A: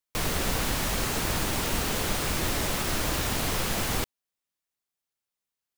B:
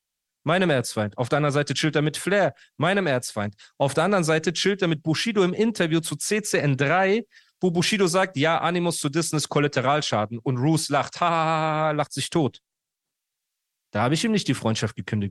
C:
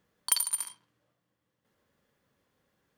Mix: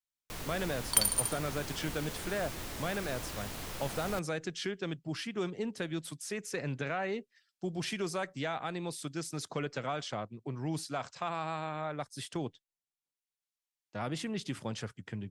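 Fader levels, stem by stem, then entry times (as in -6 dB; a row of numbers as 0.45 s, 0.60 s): -13.5 dB, -14.5 dB, 0.0 dB; 0.15 s, 0.00 s, 0.65 s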